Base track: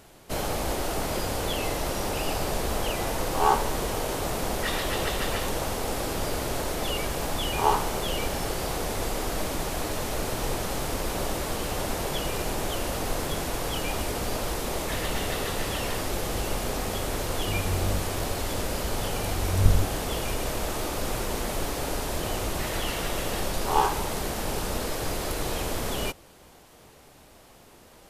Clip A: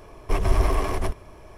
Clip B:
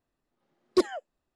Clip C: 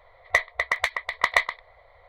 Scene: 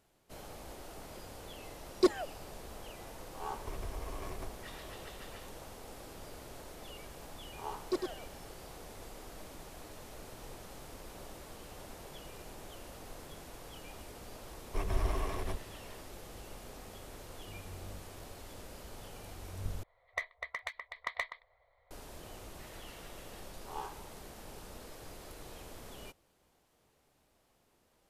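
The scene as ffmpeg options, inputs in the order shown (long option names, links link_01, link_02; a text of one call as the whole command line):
ffmpeg -i bed.wav -i cue0.wav -i cue1.wav -i cue2.wav -filter_complex "[2:a]asplit=2[link_01][link_02];[1:a]asplit=2[link_03][link_04];[0:a]volume=-19.5dB[link_05];[link_03]acompressor=threshold=-30dB:ratio=6:attack=3.2:release=140:knee=1:detection=peak[link_06];[link_02]aecho=1:1:103:0.531[link_07];[link_05]asplit=2[link_08][link_09];[link_08]atrim=end=19.834[link_10];[3:a]atrim=end=2.08,asetpts=PTS-STARTPTS,volume=-16dB[link_11];[link_09]atrim=start=21.906[link_12];[link_01]atrim=end=1.35,asetpts=PTS-STARTPTS,volume=-3dB,afade=type=in:duration=0.004:curve=hsin,afade=type=out:start_time=1.346:duration=0.004:curve=hsin,adelay=1260[link_13];[link_06]atrim=end=1.57,asetpts=PTS-STARTPTS,volume=-8dB,afade=type=in:duration=0.004:curve=hsin,afade=type=out:start_time=1.566:duration=0.004:curve=hsin,adelay=3380[link_14];[link_07]atrim=end=1.35,asetpts=PTS-STARTPTS,volume=-11.5dB,afade=type=in:duration=0.004:curve=hsin,afade=type=out:start_time=1.346:duration=0.004:curve=hsin,adelay=7150[link_15];[link_04]atrim=end=1.57,asetpts=PTS-STARTPTS,volume=-12dB,afade=type=in:duration=0.004:curve=hsin,afade=type=out:start_time=1.566:duration=0.004:curve=hsin,adelay=14450[link_16];[link_10][link_11]acrossfade=duration=0.004:curve1=hsin:curve2=hsin[link_17];[link_17][link_12]acrossfade=duration=0.004:curve1=hsin:curve2=hsin[link_18];[link_18][link_13][link_14][link_15][link_16]amix=inputs=5:normalize=0" out.wav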